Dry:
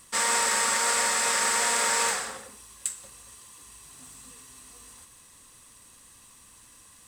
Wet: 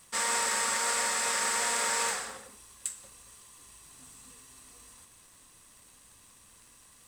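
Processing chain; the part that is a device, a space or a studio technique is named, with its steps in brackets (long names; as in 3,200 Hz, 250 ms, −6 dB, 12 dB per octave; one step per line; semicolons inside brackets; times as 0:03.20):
vinyl LP (surface crackle 140 per second −43 dBFS; pink noise bed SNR 36 dB)
level −4.5 dB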